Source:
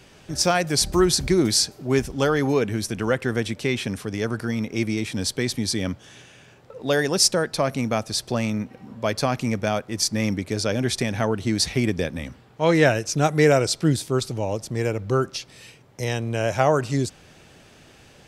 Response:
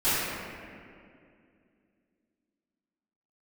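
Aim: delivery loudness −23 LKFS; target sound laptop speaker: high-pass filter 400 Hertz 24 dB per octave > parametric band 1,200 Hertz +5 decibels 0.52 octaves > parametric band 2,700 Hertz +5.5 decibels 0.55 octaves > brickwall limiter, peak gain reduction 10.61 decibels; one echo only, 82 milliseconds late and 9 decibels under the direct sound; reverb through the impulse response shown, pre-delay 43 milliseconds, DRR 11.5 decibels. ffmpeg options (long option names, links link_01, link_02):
-filter_complex "[0:a]aecho=1:1:82:0.355,asplit=2[link_01][link_02];[1:a]atrim=start_sample=2205,adelay=43[link_03];[link_02][link_03]afir=irnorm=-1:irlink=0,volume=-27dB[link_04];[link_01][link_04]amix=inputs=2:normalize=0,highpass=frequency=400:width=0.5412,highpass=frequency=400:width=1.3066,equalizer=frequency=1200:width_type=o:width=0.52:gain=5,equalizer=frequency=2700:width_type=o:width=0.55:gain=5.5,volume=3.5dB,alimiter=limit=-12dB:level=0:latency=1"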